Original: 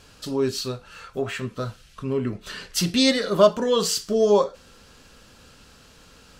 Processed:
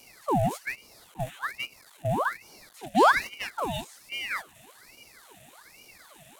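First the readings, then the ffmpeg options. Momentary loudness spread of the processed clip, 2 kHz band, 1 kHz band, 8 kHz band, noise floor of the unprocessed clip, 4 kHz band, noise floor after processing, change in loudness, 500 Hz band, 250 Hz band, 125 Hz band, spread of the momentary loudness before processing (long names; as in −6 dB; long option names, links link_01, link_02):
16 LU, +4.5 dB, +4.0 dB, −13.5 dB, −52 dBFS, −11.0 dB, −56 dBFS, −5.5 dB, −11.0 dB, −9.0 dB, −3.5 dB, 15 LU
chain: -filter_complex "[0:a]aeval=exprs='val(0)+0.5*0.0668*sgn(val(0))':channel_layout=same,aexciter=amount=15.3:drive=7.5:freq=7100,acrossover=split=3500[link_01][link_02];[link_02]acompressor=threshold=-14dB:ratio=4:attack=1:release=60[link_03];[link_01][link_03]amix=inputs=2:normalize=0,asplit=3[link_04][link_05][link_06];[link_04]bandpass=frequency=270:width_type=q:width=8,volume=0dB[link_07];[link_05]bandpass=frequency=2290:width_type=q:width=8,volume=-6dB[link_08];[link_06]bandpass=frequency=3010:width_type=q:width=8,volume=-9dB[link_09];[link_07][link_08][link_09]amix=inputs=3:normalize=0,highshelf=frequency=5200:gain=5.5,agate=range=-12dB:threshold=-34dB:ratio=16:detection=peak,aeval=exprs='val(0)*sin(2*PI*1500*n/s+1500*0.75/1.2*sin(2*PI*1.2*n/s))':channel_layout=same,volume=4.5dB"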